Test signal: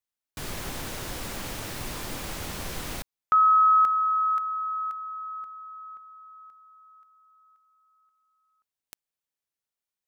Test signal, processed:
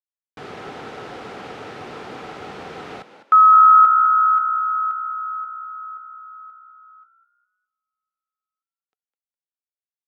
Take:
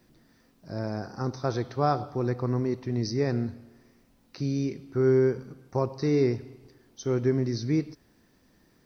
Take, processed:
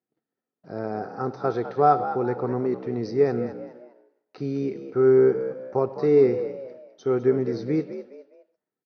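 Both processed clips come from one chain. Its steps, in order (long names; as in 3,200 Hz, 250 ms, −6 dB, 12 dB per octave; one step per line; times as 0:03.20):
noise gate −55 dBFS, range −29 dB
band-pass filter 150–3,000 Hz
hollow resonant body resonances 440/750/1,300 Hz, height 10 dB, ringing for 35 ms
on a send: echo with shifted repeats 205 ms, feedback 34%, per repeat +63 Hz, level −12 dB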